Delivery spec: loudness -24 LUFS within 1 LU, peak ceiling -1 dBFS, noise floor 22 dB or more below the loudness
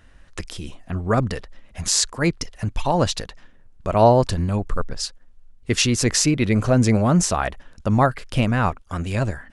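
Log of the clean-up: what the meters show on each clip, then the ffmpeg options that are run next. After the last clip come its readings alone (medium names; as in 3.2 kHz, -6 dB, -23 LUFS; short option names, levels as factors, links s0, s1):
loudness -21.0 LUFS; peak level -1.5 dBFS; loudness target -24.0 LUFS
-> -af "volume=0.708"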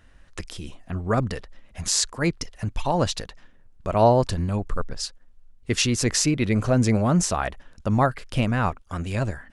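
loudness -24.0 LUFS; peak level -4.5 dBFS; noise floor -53 dBFS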